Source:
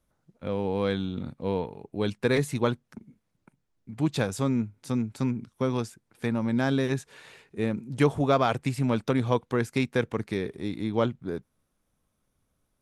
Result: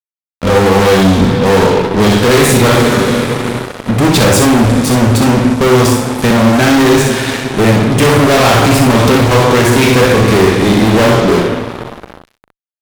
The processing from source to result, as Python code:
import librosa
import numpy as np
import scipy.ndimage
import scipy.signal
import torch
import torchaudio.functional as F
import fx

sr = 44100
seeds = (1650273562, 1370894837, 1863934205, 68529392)

p1 = fx.rev_double_slope(x, sr, seeds[0], early_s=0.6, late_s=4.4, knee_db=-17, drr_db=3.0)
p2 = fx.leveller(p1, sr, passes=1, at=(2.71, 3.91))
p3 = fx.fuzz(p2, sr, gain_db=39.0, gate_db=-45.0)
p4 = p3 + fx.room_early_taps(p3, sr, ms=(39, 63), db=(-11.5, -5.5), dry=0)
y = p4 * librosa.db_to_amplitude(5.5)